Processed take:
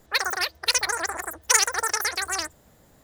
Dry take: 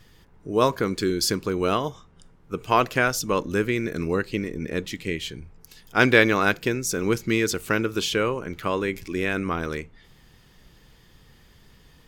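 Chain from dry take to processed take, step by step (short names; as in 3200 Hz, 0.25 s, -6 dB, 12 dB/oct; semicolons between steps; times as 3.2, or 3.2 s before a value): wide varispeed 3.98×; dynamic EQ 6000 Hz, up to +6 dB, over -35 dBFS, Q 0.74; gain -3.5 dB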